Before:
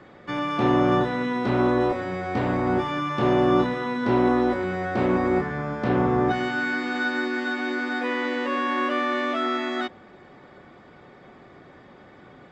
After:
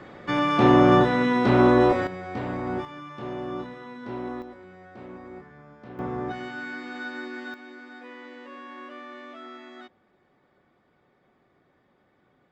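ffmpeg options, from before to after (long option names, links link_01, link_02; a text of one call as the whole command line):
ffmpeg -i in.wav -af "asetnsamples=nb_out_samples=441:pad=0,asendcmd='2.07 volume volume -6.5dB;2.85 volume volume -13.5dB;4.42 volume volume -20dB;5.99 volume volume -9.5dB;7.54 volume volume -17dB',volume=4dB" out.wav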